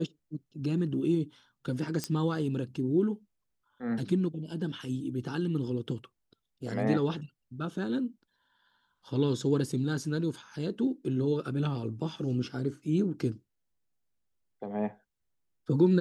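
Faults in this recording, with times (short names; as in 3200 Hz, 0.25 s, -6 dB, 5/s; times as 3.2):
2.04 pop -16 dBFS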